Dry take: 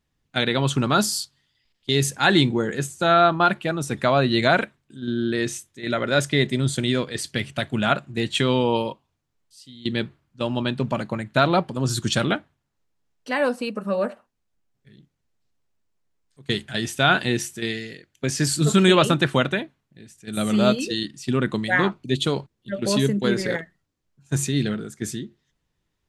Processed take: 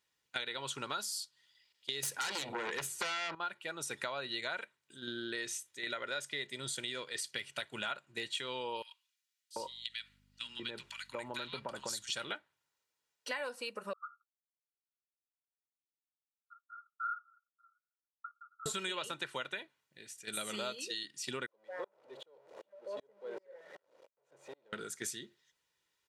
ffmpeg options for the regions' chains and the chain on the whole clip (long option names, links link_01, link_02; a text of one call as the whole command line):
ffmpeg -i in.wav -filter_complex "[0:a]asettb=1/sr,asplit=3[link_01][link_02][link_03];[link_01]atrim=end=2.034[link_04];[link_02]atrim=start=2.03:end=3.35,asetpts=PTS-STARTPTS,afade=type=in:duration=0.004:curve=qsin,afade=type=out:start_time=1.316:duration=0.004:curve=qsin,equalizer=frequency=7000:width_type=o:width=1.1:gain=-8.5,acompressor=threshold=-19dB:ratio=6:attack=3.2:release=140:knee=1:detection=peak,aeval=exprs='0.316*sin(PI/2*4.47*val(0)/0.316)':channel_layout=same[link_05];[link_03]atrim=start=3.346[link_06];[link_04][link_05]acrossfade=duration=0.004:curve1=hsin:curve2=qsin[link_07];[link_07][link_06]acrossfade=duration=0.004:curve1=qsin:curve2=hsin,asettb=1/sr,asplit=3[link_08][link_09][link_10];[link_08]atrim=end=8.824[link_11];[link_09]atrim=start=8.82:end=12.09,asetpts=PTS-STARTPTS,afade=type=in:duration=0.004:curve=qsin,afade=type=out:start_time=3.266:duration=0.004:curve=qsin,acompressor=threshold=-26dB:ratio=3:attack=3.2:release=140:knee=1:detection=peak,aeval=exprs='val(0)+0.00447*(sin(2*PI*50*n/s)+sin(2*PI*2*50*n/s)/2+sin(2*PI*3*50*n/s)/3+sin(2*PI*4*50*n/s)/4+sin(2*PI*5*50*n/s)/5)':channel_layout=same,acrossover=split=1600[link_12][link_13];[link_12]adelay=740[link_14];[link_14][link_13]amix=inputs=2:normalize=0,atrim=end_sample=144207[link_15];[link_10]atrim=start=12.086[link_16];[link_11][link_15]acrossfade=duration=0.004:curve1=hsin:curve2=qsin[link_17];[link_17][link_16]acrossfade=duration=0.004:curve1=qsin:curve2=hsin,asettb=1/sr,asplit=3[link_18][link_19][link_20];[link_18]atrim=end=13.934[link_21];[link_19]atrim=start=13.93:end=18.66,asetpts=PTS-STARTPTS,afade=type=in:duration=0.004:curve=qsin,afade=type=out:start_time=4.726:duration=0.004:curve=qsin,asuperpass=centerf=1300:order=20:qfactor=5.1,agate=range=-33dB:threshold=-55dB:ratio=3:release=100:detection=peak[link_22];[link_20]atrim=start=18.656[link_23];[link_21][link_22]acrossfade=duration=0.004:curve1=hsin:curve2=qsin[link_24];[link_24][link_23]acrossfade=duration=0.004:curve1=qsin:curve2=hsin,asettb=1/sr,asplit=3[link_25][link_26][link_27];[link_25]atrim=end=21.464[link_28];[link_26]atrim=start=21.46:end=24.73,asetpts=PTS-STARTPTS,afade=type=in:duration=0.004:curve=qsin,afade=type=out:start_time=3.266:duration=0.004:curve=qsin,aeval=exprs='val(0)+0.5*0.1*sgn(val(0))':channel_layout=same,bandpass=frequency=550:width_type=q:width=4.3,aeval=exprs='val(0)*pow(10,-37*if(lt(mod(-2.6*n/s,1),2*abs(-2.6)/1000),1-mod(-2.6*n/s,1)/(2*abs(-2.6)/1000),(mod(-2.6*n/s,1)-2*abs(-2.6)/1000)/(1-2*abs(-2.6)/1000))/20)':channel_layout=same[link_29];[link_27]atrim=start=24.726[link_30];[link_28][link_29]acrossfade=duration=0.004:curve1=hsin:curve2=qsin[link_31];[link_31][link_30]acrossfade=duration=0.004:curve1=qsin:curve2=hsin,highpass=frequency=1400:poles=1,aecho=1:1:2.1:0.36,acompressor=threshold=-38dB:ratio=6,volume=1dB" out.wav